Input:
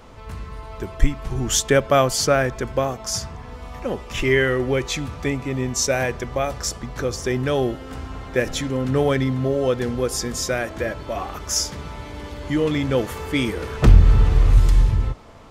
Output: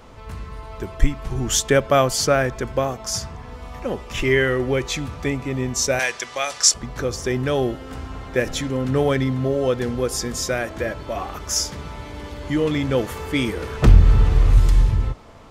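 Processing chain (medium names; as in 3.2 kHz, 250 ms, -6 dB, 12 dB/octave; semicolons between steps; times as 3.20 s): 5.99–6.74 s: frequency weighting ITU-R 468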